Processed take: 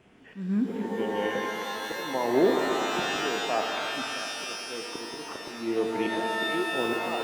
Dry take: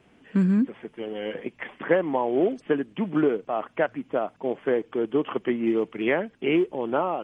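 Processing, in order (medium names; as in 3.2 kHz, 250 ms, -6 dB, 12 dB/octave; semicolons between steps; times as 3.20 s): slow attack 447 ms; de-hum 143.1 Hz, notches 39; pitch-shifted reverb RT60 3.2 s, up +12 st, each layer -2 dB, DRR 2.5 dB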